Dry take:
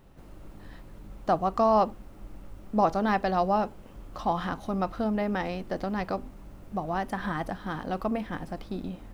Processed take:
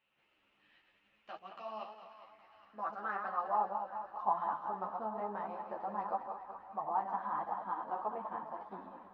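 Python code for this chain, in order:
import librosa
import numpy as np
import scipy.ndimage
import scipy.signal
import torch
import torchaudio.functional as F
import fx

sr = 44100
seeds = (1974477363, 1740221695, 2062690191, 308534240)

p1 = fx.reverse_delay_fb(x, sr, ms=102, feedback_pct=57, wet_db=-6)
p2 = fx.high_shelf(p1, sr, hz=3000.0, db=-10.5)
p3 = fx.rider(p2, sr, range_db=4, speed_s=0.5)
p4 = p2 + F.gain(torch.from_numpy(p3), -1.5).numpy()
p5 = fx.filter_sweep_bandpass(p4, sr, from_hz=2700.0, to_hz=960.0, start_s=1.99, end_s=3.73, q=4.6)
p6 = p5 + fx.echo_thinned(p5, sr, ms=408, feedback_pct=80, hz=710.0, wet_db=-15.5, dry=0)
p7 = fx.dynamic_eq(p6, sr, hz=2000.0, q=1.0, threshold_db=-47.0, ratio=4.0, max_db=-3)
y = fx.ensemble(p7, sr)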